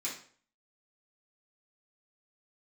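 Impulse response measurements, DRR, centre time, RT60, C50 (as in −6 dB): −9.0 dB, 29 ms, 0.50 s, 6.5 dB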